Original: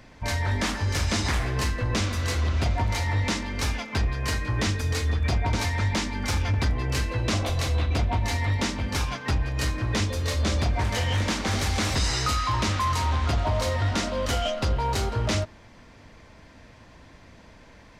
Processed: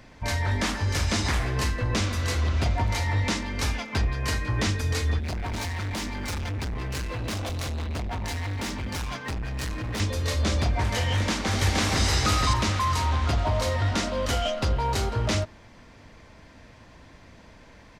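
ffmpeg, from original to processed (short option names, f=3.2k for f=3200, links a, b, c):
-filter_complex "[0:a]asettb=1/sr,asplit=3[a][b][c];[a]atrim=end=5.204[d];[b]atrim=start=5.2:end=10,asetpts=PTS-STARTPTS,afade=t=in:d=0.004:c=qsin,afade=t=out:st=4.796:d=0.004:c=qsin,asoftclip=type=hard:threshold=-28.5dB[e];[c]atrim=start=9.996[f];[d][e]acrossfade=d=0.004:c1=hsin:c2=qsin[g];[g][f]acrossfade=d=0.004:c1=qsin:c2=hsin,asplit=2[h][i];[i]afade=t=in:st=11.14:d=0.01,afade=t=out:st=12.06:d=0.01,aecho=0:1:470|940|1410:0.841395|0.168279|0.0336558[j];[h][j]amix=inputs=2:normalize=0"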